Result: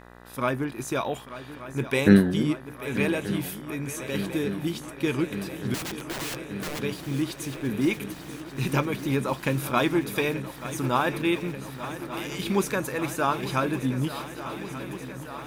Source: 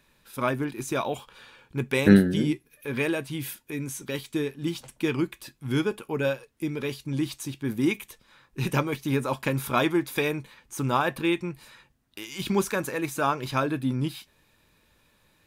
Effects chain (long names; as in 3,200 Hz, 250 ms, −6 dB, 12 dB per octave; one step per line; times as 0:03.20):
0:05.74–0:06.80: wrap-around overflow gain 29 dB
feedback echo with a long and a short gap by turns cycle 1,182 ms, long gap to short 3 to 1, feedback 77%, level −14 dB
hum with harmonics 60 Hz, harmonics 33, −49 dBFS −2 dB per octave